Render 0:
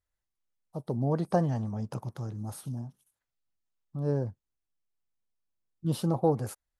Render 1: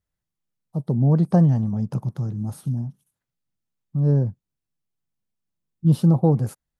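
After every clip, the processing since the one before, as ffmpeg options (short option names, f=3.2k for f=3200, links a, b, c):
-af "equalizer=f=160:w=0.8:g=13.5"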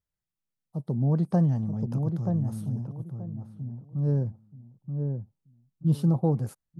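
-filter_complex "[0:a]asplit=2[a][b];[b]adelay=930,lowpass=f=880:p=1,volume=-4.5dB,asplit=2[c][d];[d]adelay=930,lowpass=f=880:p=1,volume=0.25,asplit=2[e][f];[f]adelay=930,lowpass=f=880:p=1,volume=0.25[g];[a][c][e][g]amix=inputs=4:normalize=0,volume=-6.5dB"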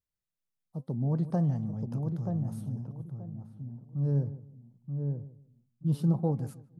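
-filter_complex "[0:a]flanger=delay=3.6:depth=3.7:regen=87:speed=1.1:shape=sinusoidal,asplit=2[a][b];[b]adelay=153,lowpass=f=860:p=1,volume=-15dB,asplit=2[c][d];[d]adelay=153,lowpass=f=860:p=1,volume=0.27,asplit=2[e][f];[f]adelay=153,lowpass=f=860:p=1,volume=0.27[g];[a][c][e][g]amix=inputs=4:normalize=0"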